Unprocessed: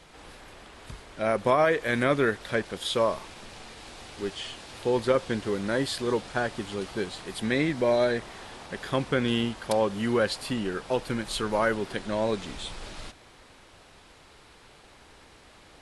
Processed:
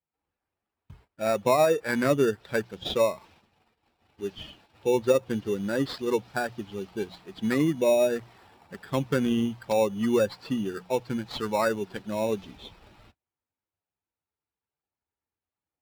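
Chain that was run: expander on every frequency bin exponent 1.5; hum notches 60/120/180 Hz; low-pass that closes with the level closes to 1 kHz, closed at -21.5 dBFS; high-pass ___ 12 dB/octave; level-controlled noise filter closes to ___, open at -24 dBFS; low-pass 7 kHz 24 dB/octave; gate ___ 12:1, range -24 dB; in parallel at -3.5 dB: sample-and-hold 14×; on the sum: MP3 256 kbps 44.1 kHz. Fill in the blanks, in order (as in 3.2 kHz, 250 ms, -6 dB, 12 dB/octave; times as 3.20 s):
99 Hz, 2.4 kHz, -59 dBFS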